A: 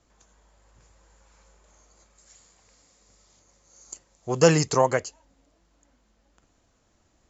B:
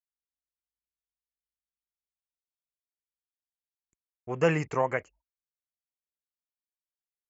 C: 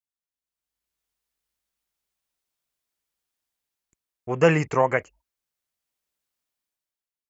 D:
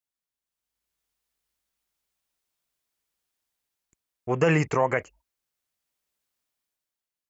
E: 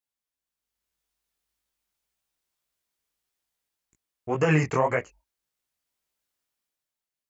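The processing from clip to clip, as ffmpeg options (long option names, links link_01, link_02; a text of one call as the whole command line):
ffmpeg -i in.wav -af "highshelf=frequency=3200:width_type=q:width=3:gain=-11,anlmdn=0.0251,agate=range=-38dB:threshold=-49dB:ratio=16:detection=peak,volume=-7dB" out.wav
ffmpeg -i in.wav -af "dynaudnorm=framelen=110:gausssize=13:maxgain=14dB,volume=-2dB" out.wav
ffmpeg -i in.wav -af "alimiter=limit=-12.5dB:level=0:latency=1:release=55,volume=1.5dB" out.wav
ffmpeg -i in.wav -af "flanger=delay=16.5:depth=7.8:speed=1.8,volume=2.5dB" out.wav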